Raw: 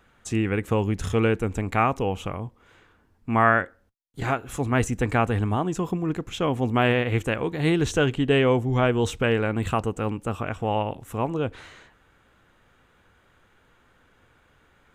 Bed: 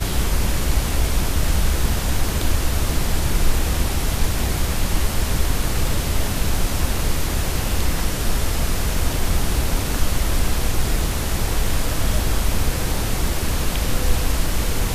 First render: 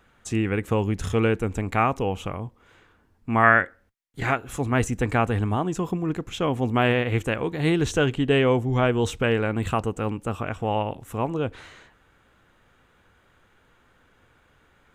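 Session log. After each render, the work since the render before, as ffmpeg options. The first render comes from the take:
-filter_complex "[0:a]asettb=1/sr,asplit=3[a][b][c];[a]atrim=end=3.434[d];[b]atrim=start=3.43:end=4.36,asetpts=PTS-STARTPTS,afade=t=in:d=0.004:c=qsin,afade=t=out:st=0.926:d=0.004:c=qsin,equalizer=f=2k:w=1.7:g=7[e];[c]atrim=start=4.356[f];[d][e]acrossfade=d=0.004:c1=hsin:c2=qsin[g];[g][f]acrossfade=d=0.004:c1=qsin:c2=hsin"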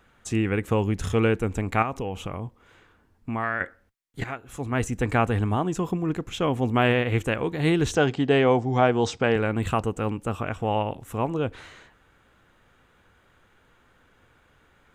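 -filter_complex "[0:a]asettb=1/sr,asplit=3[a][b][c];[a]atrim=end=1.824[d];[b]atrim=start=1.82:end=3.61,asetpts=PTS-STARTPTS,afade=t=in:d=0.004:c=qsin,afade=t=out:st=1.786:d=0.004:c=qsin,acompressor=threshold=-26dB:ratio=3:attack=3.2:release=140:knee=1:detection=peak[e];[c]atrim=start=3.606[f];[d][e]acrossfade=d=0.004:c1=hsin:c2=qsin[g];[g][f]acrossfade=d=0.004:c1=qsin:c2=hsin,asettb=1/sr,asplit=3[h][i][j];[h]atrim=end=7.954[k];[i]atrim=start=7.95:end=9.36,asetpts=PTS-STARTPTS,afade=t=in:d=0.004:c=qsin,afade=t=out:st=1.406:d=0.004:c=qsin,highpass=120,equalizer=f=760:t=q:w=4:g=8,equalizer=f=2.8k:t=q:w=4:g=-4,equalizer=f=4.9k:t=q:w=4:g=10,lowpass=f=7.4k:w=0.5412,lowpass=f=7.4k:w=1.3066[l];[j]atrim=start=9.356[m];[k][l]acrossfade=d=0.004:c1=hsin:c2=qsin[n];[n][m]acrossfade=d=0.004:c1=qsin:c2=hsin,asplit=2[o][p];[o]atrim=end=4.24,asetpts=PTS-STARTPTS,afade=t=out:st=4.236:d=0.004:c=hsin:silence=0.223872[q];[p]atrim=start=4.24,asetpts=PTS-STARTPTS,afade=t=in:d=0.91:silence=0.223872[r];[q][r]concat=n=2:v=0:a=1"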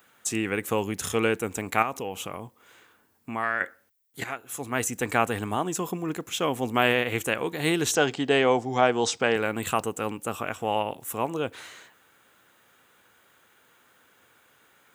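-af "highpass=87,aemphasis=mode=production:type=bsi"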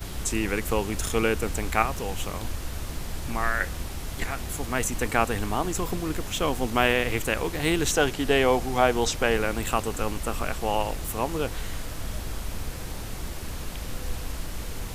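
-filter_complex "[1:a]volume=-13dB[a];[0:a][a]amix=inputs=2:normalize=0"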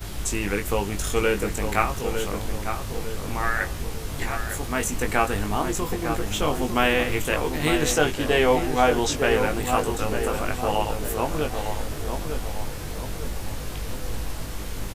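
-filter_complex "[0:a]asplit=2[a][b];[b]adelay=20,volume=-5dB[c];[a][c]amix=inputs=2:normalize=0,asplit=2[d][e];[e]adelay=903,lowpass=f=1.5k:p=1,volume=-6dB,asplit=2[f][g];[g]adelay=903,lowpass=f=1.5k:p=1,volume=0.5,asplit=2[h][i];[i]adelay=903,lowpass=f=1.5k:p=1,volume=0.5,asplit=2[j][k];[k]adelay=903,lowpass=f=1.5k:p=1,volume=0.5,asplit=2[l][m];[m]adelay=903,lowpass=f=1.5k:p=1,volume=0.5,asplit=2[n][o];[o]adelay=903,lowpass=f=1.5k:p=1,volume=0.5[p];[d][f][h][j][l][n][p]amix=inputs=7:normalize=0"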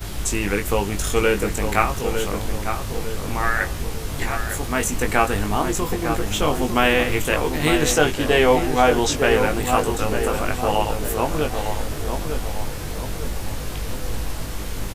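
-af "volume=3.5dB,alimiter=limit=-2dB:level=0:latency=1"

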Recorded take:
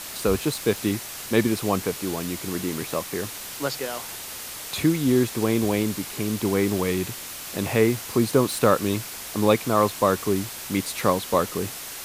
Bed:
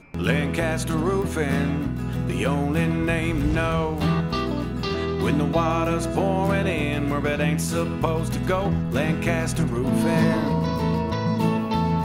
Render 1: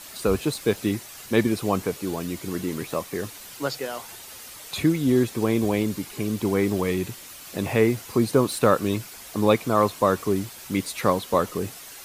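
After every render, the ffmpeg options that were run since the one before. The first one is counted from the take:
-af "afftdn=nr=8:nf=-37"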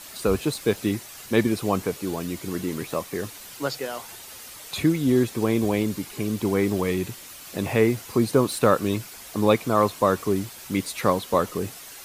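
-af anull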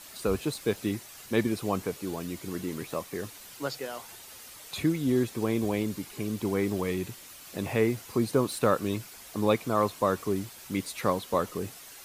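-af "volume=-5.5dB"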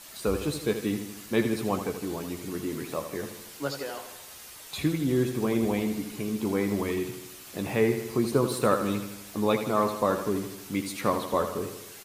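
-filter_complex "[0:a]asplit=2[a][b];[b]adelay=14,volume=-8.5dB[c];[a][c]amix=inputs=2:normalize=0,aecho=1:1:79|158|237|316|395|474|553:0.355|0.202|0.115|0.0657|0.0375|0.0213|0.0122"

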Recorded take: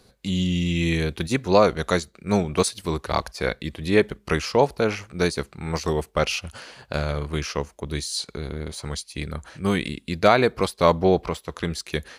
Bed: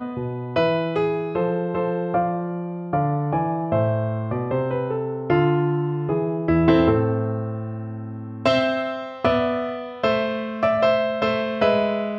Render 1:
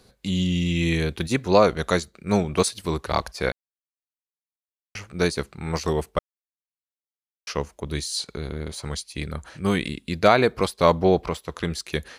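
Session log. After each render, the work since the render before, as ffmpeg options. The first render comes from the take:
-filter_complex "[0:a]asplit=5[a][b][c][d][e];[a]atrim=end=3.52,asetpts=PTS-STARTPTS,afade=t=out:st=3.516:d=0.004:c=hsin[f];[b]atrim=start=3.52:end=4.95,asetpts=PTS-STARTPTS,volume=0[g];[c]atrim=start=4.95:end=6.19,asetpts=PTS-STARTPTS,afade=t=in:d=0.004:c=hsin,afade=t=out:st=1.236:d=0.004:c=hsin[h];[d]atrim=start=6.19:end=7.47,asetpts=PTS-STARTPTS,volume=0[i];[e]atrim=start=7.47,asetpts=PTS-STARTPTS,afade=t=in:d=0.004:c=hsin[j];[f][g][h][i][j]concat=n=5:v=0:a=1"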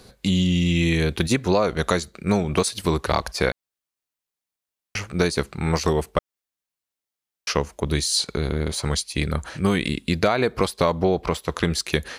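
-filter_complex "[0:a]asplit=2[a][b];[b]alimiter=limit=-10dB:level=0:latency=1:release=127,volume=3dB[c];[a][c]amix=inputs=2:normalize=0,acompressor=threshold=-17dB:ratio=4"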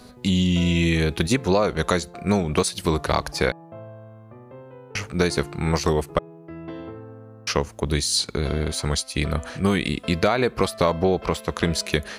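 -filter_complex "[1:a]volume=-19.5dB[a];[0:a][a]amix=inputs=2:normalize=0"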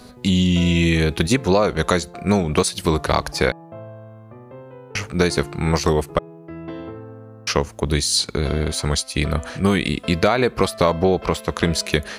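-af "volume=3dB,alimiter=limit=-1dB:level=0:latency=1"

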